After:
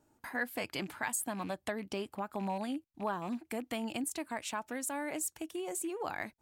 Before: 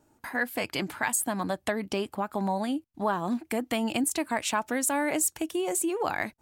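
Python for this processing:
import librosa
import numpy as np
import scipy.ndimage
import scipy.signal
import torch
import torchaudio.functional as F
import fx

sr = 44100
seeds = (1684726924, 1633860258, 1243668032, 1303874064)

y = fx.rattle_buzz(x, sr, strikes_db=-36.0, level_db=-35.0)
y = fx.rider(y, sr, range_db=10, speed_s=2.0)
y = y * 10.0 ** (-9.0 / 20.0)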